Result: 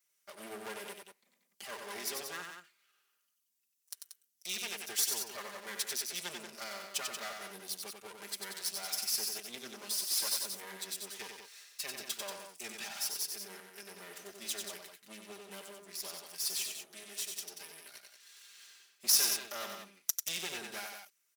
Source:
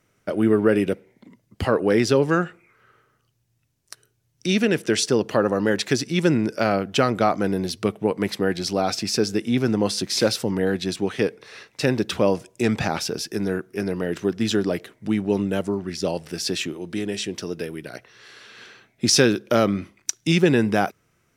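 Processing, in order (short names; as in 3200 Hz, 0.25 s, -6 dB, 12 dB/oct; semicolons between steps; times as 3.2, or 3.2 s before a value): minimum comb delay 5 ms; differentiator; loudspeakers at several distances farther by 32 m -5 dB, 63 m -8 dB; gain -4 dB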